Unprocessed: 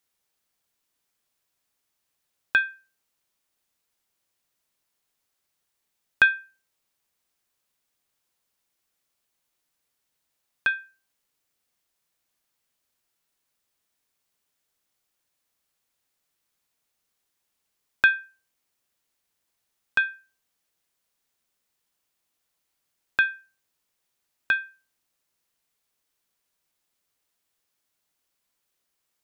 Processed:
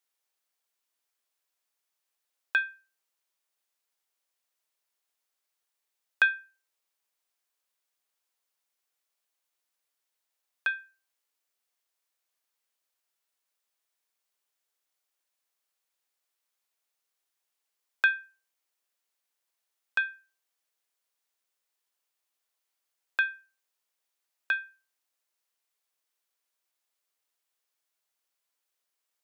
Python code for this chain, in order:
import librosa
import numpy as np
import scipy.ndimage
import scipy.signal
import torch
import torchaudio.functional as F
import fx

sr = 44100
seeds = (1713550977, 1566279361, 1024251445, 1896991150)

y = scipy.signal.sosfilt(scipy.signal.butter(2, 440.0, 'highpass', fs=sr, output='sos'), x)
y = y * 10.0 ** (-5.0 / 20.0)